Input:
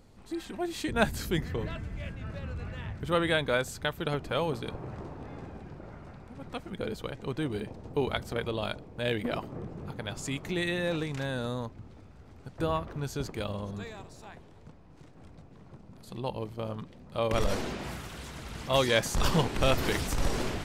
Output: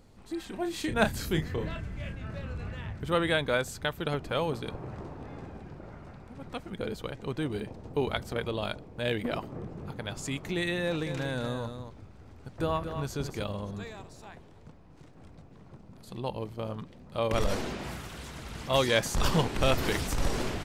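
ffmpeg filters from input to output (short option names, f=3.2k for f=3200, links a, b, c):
-filter_complex "[0:a]asplit=3[a][b][c];[a]afade=t=out:st=0.51:d=0.02[d];[b]asplit=2[e][f];[f]adelay=32,volume=-8dB[g];[e][g]amix=inputs=2:normalize=0,afade=t=in:st=0.51:d=0.02,afade=t=out:st=2.73:d=0.02[h];[c]afade=t=in:st=2.73:d=0.02[i];[d][h][i]amix=inputs=3:normalize=0,asettb=1/sr,asplit=3[j][k][l];[j]atrim=end=10.834[m];[k]atrim=start=10.83:end=13.43,asetpts=PTS-STARTPTS,afade=t=in:d=0.004:c=qsin,afade=t=out:st=2.596:d=0.004:c=qsin,aecho=1:1:232:0.376,atrim=end_sample=114660[n];[l]atrim=start=13.426[o];[m][n]acrossfade=d=0.004:c1=hsin:c2=qsin[p];[p][o]acrossfade=d=0.004:c1=qsin:c2=hsin"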